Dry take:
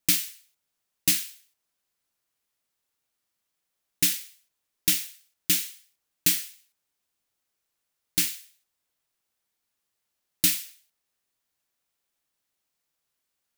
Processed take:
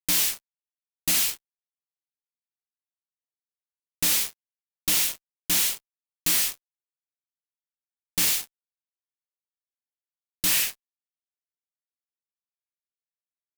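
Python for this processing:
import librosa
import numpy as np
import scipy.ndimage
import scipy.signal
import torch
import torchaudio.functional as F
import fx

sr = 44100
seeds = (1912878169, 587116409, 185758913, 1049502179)

y = fx.spec_repair(x, sr, seeds[0], start_s=10.54, length_s=0.42, low_hz=1200.0, high_hz=3200.0, source='both')
y = fx.fuzz(y, sr, gain_db=44.0, gate_db=-47.0)
y = y * librosa.db_to_amplitude(-6.5)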